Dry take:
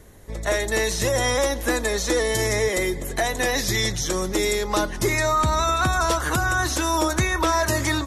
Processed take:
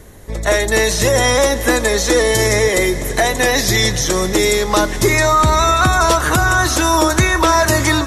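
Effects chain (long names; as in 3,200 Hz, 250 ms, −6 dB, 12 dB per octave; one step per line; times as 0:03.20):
feedback delay with all-pass diffusion 467 ms, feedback 58%, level −15.5 dB
level +8 dB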